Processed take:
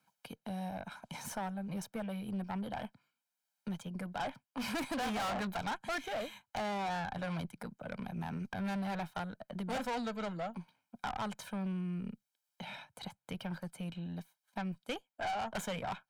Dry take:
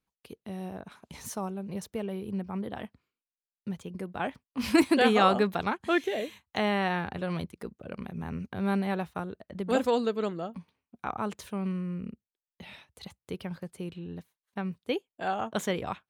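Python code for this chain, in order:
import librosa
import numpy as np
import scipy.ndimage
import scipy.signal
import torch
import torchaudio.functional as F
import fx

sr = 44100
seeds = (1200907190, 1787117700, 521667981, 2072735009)

y = scipy.signal.sosfilt(scipy.signal.butter(4, 130.0, 'highpass', fs=sr, output='sos'), x)
y = fx.peak_eq(y, sr, hz=1100.0, db=6.5, octaves=0.9)
y = y + 0.79 * np.pad(y, (int(1.3 * sr / 1000.0), 0))[:len(y)]
y = fx.tube_stage(y, sr, drive_db=30.0, bias=0.45)
y = fx.band_squash(y, sr, depth_pct=40)
y = y * librosa.db_to_amplitude(-3.0)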